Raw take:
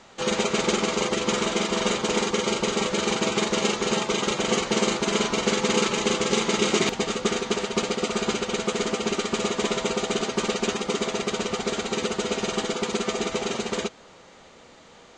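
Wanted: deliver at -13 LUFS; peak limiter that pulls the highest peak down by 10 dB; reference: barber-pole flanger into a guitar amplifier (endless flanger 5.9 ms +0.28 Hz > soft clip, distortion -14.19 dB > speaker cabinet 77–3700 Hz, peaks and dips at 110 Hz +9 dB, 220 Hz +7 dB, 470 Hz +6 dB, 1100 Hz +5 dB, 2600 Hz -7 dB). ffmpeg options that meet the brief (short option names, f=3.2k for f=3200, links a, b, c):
-filter_complex "[0:a]alimiter=limit=-16dB:level=0:latency=1,asplit=2[a][b];[b]adelay=5.9,afreqshift=0.28[c];[a][c]amix=inputs=2:normalize=1,asoftclip=threshold=-26dB,highpass=77,equalizer=f=110:t=q:w=4:g=9,equalizer=f=220:t=q:w=4:g=7,equalizer=f=470:t=q:w=4:g=6,equalizer=f=1.1k:t=q:w=4:g=5,equalizer=f=2.6k:t=q:w=4:g=-7,lowpass=f=3.7k:w=0.5412,lowpass=f=3.7k:w=1.3066,volume=17.5dB"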